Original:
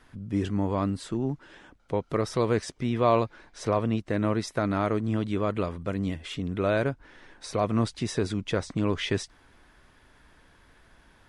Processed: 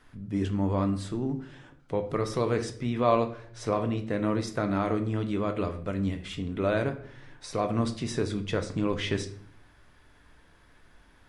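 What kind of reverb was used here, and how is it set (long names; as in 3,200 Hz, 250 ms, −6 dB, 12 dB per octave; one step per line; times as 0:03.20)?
rectangular room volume 86 cubic metres, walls mixed, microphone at 0.35 metres
level −2.5 dB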